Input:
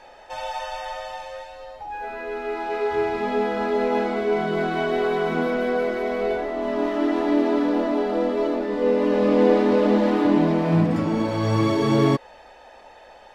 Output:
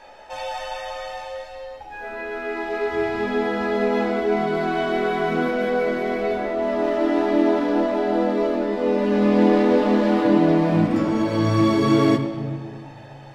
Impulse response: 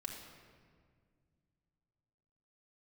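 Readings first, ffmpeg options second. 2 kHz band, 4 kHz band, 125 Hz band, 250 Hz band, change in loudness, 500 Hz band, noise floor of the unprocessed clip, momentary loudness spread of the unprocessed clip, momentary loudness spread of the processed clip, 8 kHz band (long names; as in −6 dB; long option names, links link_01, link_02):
+2.0 dB, +1.5 dB, +0.5 dB, +2.0 dB, +1.5 dB, +0.5 dB, −47 dBFS, 14 LU, 16 LU, can't be measured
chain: -filter_complex "[0:a]asplit=2[link_01][link_02];[1:a]atrim=start_sample=2205,adelay=15[link_03];[link_02][link_03]afir=irnorm=-1:irlink=0,volume=-1.5dB[link_04];[link_01][link_04]amix=inputs=2:normalize=0"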